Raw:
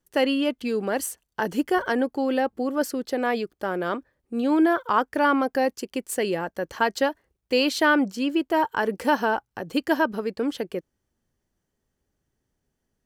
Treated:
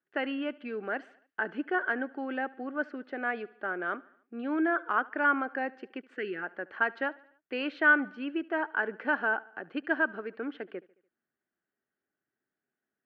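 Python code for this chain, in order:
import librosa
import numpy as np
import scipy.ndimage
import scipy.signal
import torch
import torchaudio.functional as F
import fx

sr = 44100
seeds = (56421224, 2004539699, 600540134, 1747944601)

y = fx.cabinet(x, sr, low_hz=320.0, low_slope=12, high_hz=2500.0, hz=(510.0, 960.0, 1500.0), db=(-8, -8, 8))
y = fx.echo_feedback(y, sr, ms=73, feedback_pct=55, wet_db=-22.5)
y = fx.spec_box(y, sr, start_s=6.16, length_s=0.27, low_hz=510.0, high_hz=1200.0, gain_db=-14)
y = y * librosa.db_to_amplitude(-5.5)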